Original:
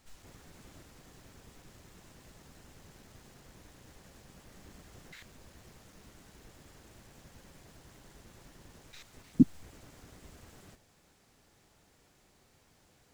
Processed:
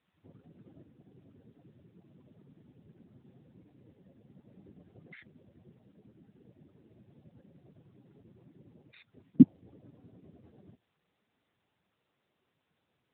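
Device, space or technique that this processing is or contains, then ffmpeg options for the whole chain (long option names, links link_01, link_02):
mobile call with aggressive noise cancelling: -af "highpass=100,afftdn=noise_reduction=20:noise_floor=-51,volume=4dB" -ar 8000 -c:a libopencore_amrnb -b:a 10200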